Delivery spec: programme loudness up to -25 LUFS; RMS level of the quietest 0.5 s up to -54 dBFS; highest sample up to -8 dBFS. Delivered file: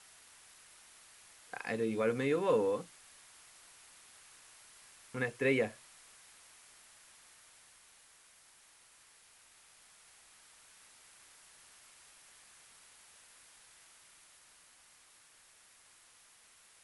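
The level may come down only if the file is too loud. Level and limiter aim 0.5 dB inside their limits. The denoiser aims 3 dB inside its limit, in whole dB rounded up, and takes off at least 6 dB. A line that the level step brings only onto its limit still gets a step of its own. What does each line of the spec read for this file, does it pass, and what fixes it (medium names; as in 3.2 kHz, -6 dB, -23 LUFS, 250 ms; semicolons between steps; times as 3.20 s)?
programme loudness -33.5 LUFS: pass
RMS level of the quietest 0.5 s -63 dBFS: pass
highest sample -18.5 dBFS: pass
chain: none needed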